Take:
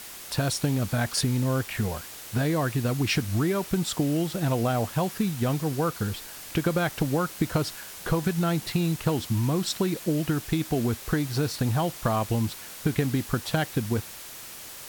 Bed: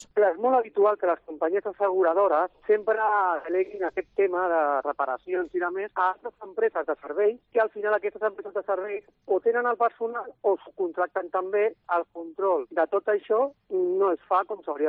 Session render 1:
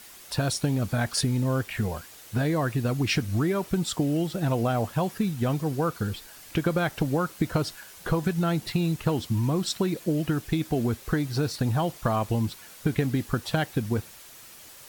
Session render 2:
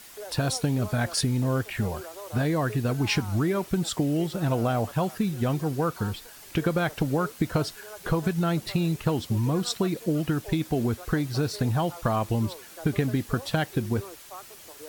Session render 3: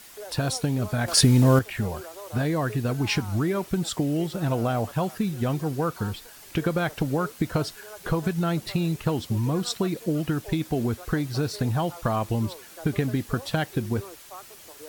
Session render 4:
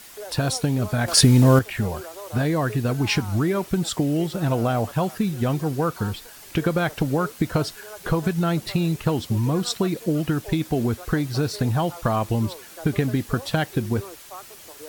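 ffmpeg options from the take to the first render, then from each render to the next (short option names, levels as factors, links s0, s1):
-af "afftdn=nr=7:nf=-42"
-filter_complex "[1:a]volume=0.1[s0];[0:a][s0]amix=inputs=2:normalize=0"
-filter_complex "[0:a]asplit=3[s0][s1][s2];[s0]atrim=end=1.082[s3];[s1]atrim=start=1.078:end=1.592,asetpts=PTS-STARTPTS,volume=2.51[s4];[s2]atrim=start=1.588[s5];[s3][s4]acrossfade=d=0.004:c1=hsin:c2=hsin[s6];[s6][s5]acrossfade=d=0.004:c1=hsin:c2=hsin"
-af "volume=1.41"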